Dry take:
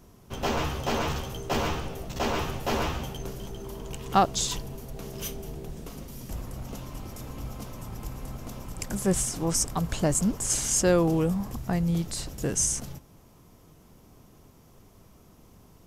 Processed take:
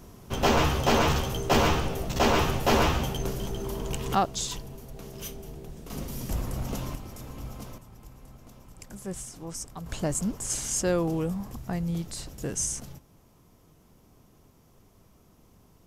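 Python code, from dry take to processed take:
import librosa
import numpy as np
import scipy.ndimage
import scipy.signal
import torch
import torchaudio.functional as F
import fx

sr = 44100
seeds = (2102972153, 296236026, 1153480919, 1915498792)

y = fx.gain(x, sr, db=fx.steps((0.0, 5.5), (4.15, -3.5), (5.9, 5.5), (6.95, -2.0), (7.78, -11.5), (9.86, -4.0)))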